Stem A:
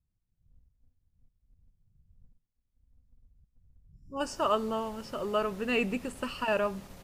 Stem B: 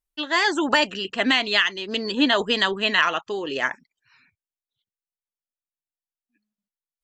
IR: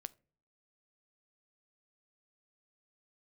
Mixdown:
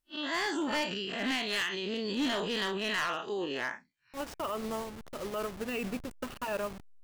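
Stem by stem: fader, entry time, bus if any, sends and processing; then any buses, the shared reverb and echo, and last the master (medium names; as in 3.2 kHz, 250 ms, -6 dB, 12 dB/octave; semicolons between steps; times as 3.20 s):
+2.0 dB, 0.00 s, no send, send-on-delta sampling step -33.5 dBFS; upward expansion 1.5:1, over -39 dBFS
+2.5 dB, 0.00 s, no send, spectral blur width 94 ms; overload inside the chain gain 20.5 dB; auto duck -6 dB, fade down 1.90 s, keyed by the first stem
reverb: none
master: peak limiter -26.5 dBFS, peak gain reduction 12 dB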